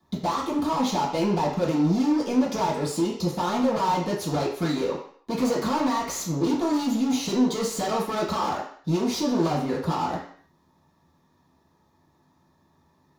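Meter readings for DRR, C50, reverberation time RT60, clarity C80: -11.0 dB, 5.5 dB, 0.55 s, 9.0 dB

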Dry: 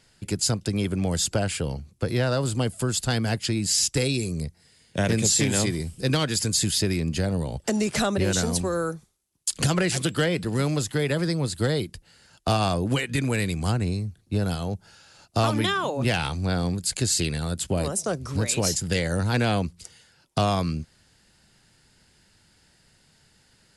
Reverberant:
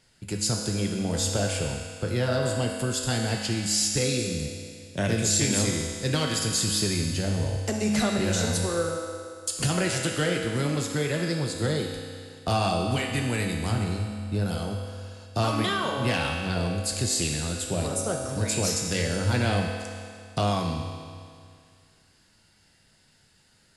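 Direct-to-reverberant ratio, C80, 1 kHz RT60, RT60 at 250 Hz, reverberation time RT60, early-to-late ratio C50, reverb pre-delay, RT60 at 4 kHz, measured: 0.0 dB, 3.5 dB, 2.2 s, 2.2 s, 2.2 s, 2.5 dB, 4 ms, 2.2 s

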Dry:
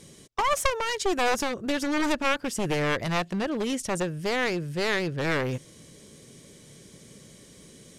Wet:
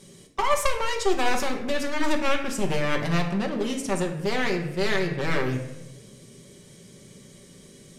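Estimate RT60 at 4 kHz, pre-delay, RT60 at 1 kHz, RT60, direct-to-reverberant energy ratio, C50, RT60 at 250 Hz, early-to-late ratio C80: 0.65 s, 5 ms, 0.90 s, 1.0 s, 1.5 dB, 7.5 dB, 1.1 s, 10.5 dB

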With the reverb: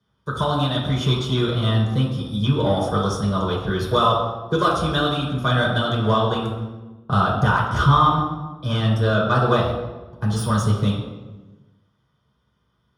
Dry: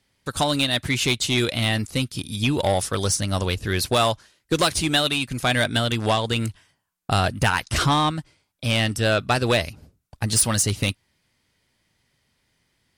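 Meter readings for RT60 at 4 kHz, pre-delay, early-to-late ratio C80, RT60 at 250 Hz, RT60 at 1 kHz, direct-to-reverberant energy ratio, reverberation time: 0.80 s, 3 ms, 4.5 dB, 1.6 s, 1.1 s, -6.0 dB, 1.2 s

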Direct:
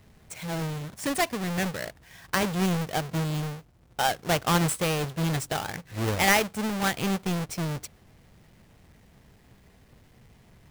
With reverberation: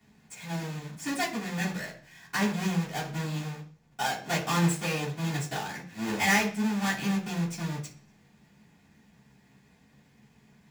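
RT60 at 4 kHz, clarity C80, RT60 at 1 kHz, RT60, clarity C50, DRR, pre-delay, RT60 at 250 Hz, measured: 0.55 s, 14.5 dB, 0.40 s, 0.45 s, 10.0 dB, -11.0 dB, 3 ms, 0.55 s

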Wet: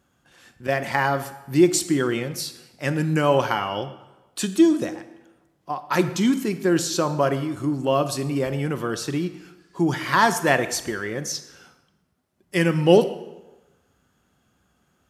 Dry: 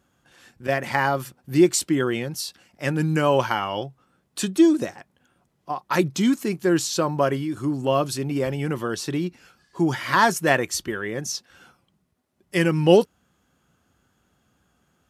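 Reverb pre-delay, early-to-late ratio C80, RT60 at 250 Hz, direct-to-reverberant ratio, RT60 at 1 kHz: 25 ms, 14.0 dB, 1.0 s, 11.0 dB, 1.1 s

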